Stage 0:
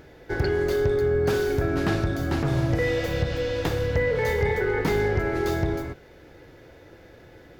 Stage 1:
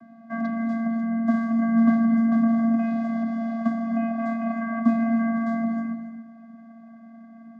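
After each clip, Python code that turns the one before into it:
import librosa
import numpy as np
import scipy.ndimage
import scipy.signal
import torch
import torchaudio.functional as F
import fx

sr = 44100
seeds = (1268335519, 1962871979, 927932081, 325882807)

y = fx.high_shelf_res(x, sr, hz=1800.0, db=-9.0, q=3.0)
y = fx.vocoder(y, sr, bands=16, carrier='square', carrier_hz=228.0)
y = fx.rev_gated(y, sr, seeds[0], gate_ms=300, shape='rising', drr_db=8.0)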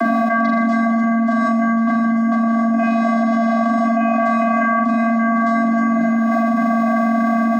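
y = scipy.signal.sosfilt(scipy.signal.butter(4, 290.0, 'highpass', fs=sr, output='sos'), x)
y = fx.room_flutter(y, sr, wall_m=6.9, rt60_s=0.56)
y = fx.env_flatten(y, sr, amount_pct=100)
y = y * 10.0 ** (6.0 / 20.0)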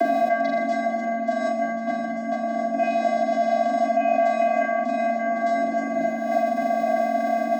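y = fx.peak_eq(x, sr, hz=330.0, db=3.5, octaves=2.8)
y = fx.fixed_phaser(y, sr, hz=510.0, stages=4)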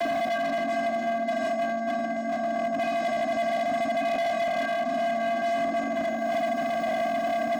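y = fx.highpass(x, sr, hz=150.0, slope=6)
y = np.clip(10.0 ** (23.5 / 20.0) * y, -1.0, 1.0) / 10.0 ** (23.5 / 20.0)
y = y + 10.0 ** (-15.5 / 20.0) * np.pad(y, (int(747 * sr / 1000.0), 0))[:len(y)]
y = y * 10.0 ** (-1.0 / 20.0)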